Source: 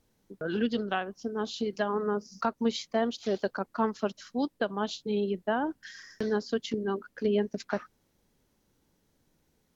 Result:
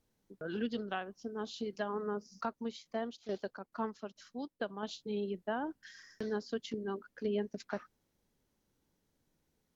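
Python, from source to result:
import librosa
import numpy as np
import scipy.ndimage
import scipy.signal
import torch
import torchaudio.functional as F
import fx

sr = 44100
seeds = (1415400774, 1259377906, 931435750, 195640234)

y = fx.tremolo_shape(x, sr, shape='saw_down', hz=2.3, depth_pct=70, at=(2.42, 4.83))
y = F.gain(torch.from_numpy(y), -7.5).numpy()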